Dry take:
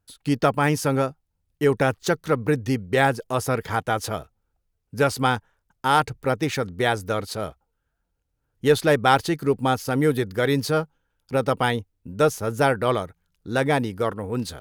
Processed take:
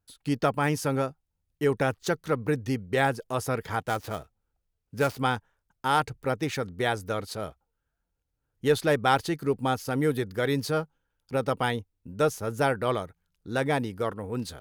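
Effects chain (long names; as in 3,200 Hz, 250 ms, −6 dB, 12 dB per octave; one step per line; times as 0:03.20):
0:03.80–0:05.19: gap after every zero crossing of 0.067 ms
level −5 dB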